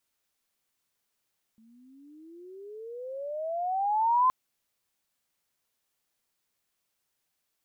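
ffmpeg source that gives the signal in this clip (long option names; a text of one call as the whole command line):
ffmpeg -f lavfi -i "aevalsrc='pow(10,(-18.5+37*(t/2.72-1))/20)*sin(2*PI*219*2.72/(27*log(2)/12)*(exp(27*log(2)/12*t/2.72)-1))':duration=2.72:sample_rate=44100" out.wav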